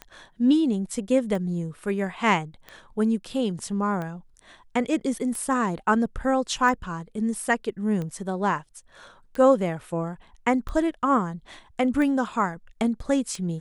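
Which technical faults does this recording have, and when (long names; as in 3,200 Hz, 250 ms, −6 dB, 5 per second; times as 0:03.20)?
scratch tick 45 rpm −21 dBFS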